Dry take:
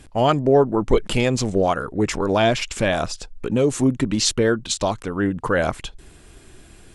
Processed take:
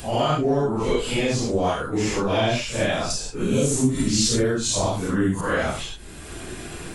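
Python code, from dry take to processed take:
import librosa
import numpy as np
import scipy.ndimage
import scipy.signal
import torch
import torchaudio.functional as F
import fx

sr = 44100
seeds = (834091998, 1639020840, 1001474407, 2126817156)

y = fx.phase_scramble(x, sr, seeds[0], window_ms=200)
y = fx.bass_treble(y, sr, bass_db=7, treble_db=15, at=(3.1, 5.41))
y = fx.band_squash(y, sr, depth_pct=70)
y = y * 10.0 ** (-4.0 / 20.0)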